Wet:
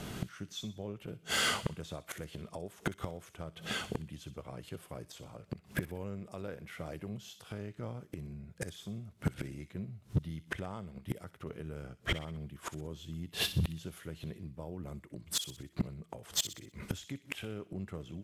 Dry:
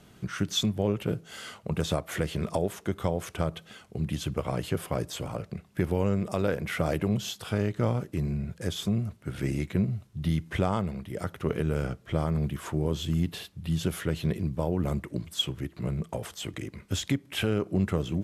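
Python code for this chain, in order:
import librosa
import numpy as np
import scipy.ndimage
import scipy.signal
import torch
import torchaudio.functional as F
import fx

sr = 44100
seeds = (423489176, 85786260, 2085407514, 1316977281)

y = fx.gate_flip(x, sr, shuts_db=-28.0, range_db=-27)
y = np.clip(y, -10.0 ** (-35.0 / 20.0), 10.0 ** (-35.0 / 20.0))
y = fx.echo_wet_highpass(y, sr, ms=62, feedback_pct=44, hz=2400.0, wet_db=-10.5)
y = y * librosa.db_to_amplitude(12.0)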